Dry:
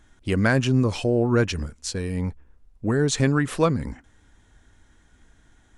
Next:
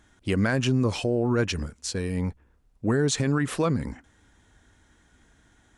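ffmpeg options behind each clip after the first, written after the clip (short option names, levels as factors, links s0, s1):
-af "highpass=f=70:p=1,alimiter=limit=0.178:level=0:latency=1:release=57"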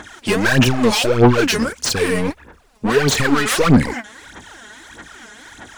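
-filter_complex "[0:a]asplit=2[s0][s1];[s1]highpass=f=720:p=1,volume=20,asoftclip=type=tanh:threshold=0.188[s2];[s0][s2]amix=inputs=2:normalize=0,lowpass=f=7000:p=1,volume=0.501,aphaser=in_gain=1:out_gain=1:delay=4.8:decay=0.74:speed=1.6:type=sinusoidal,volume=1.26"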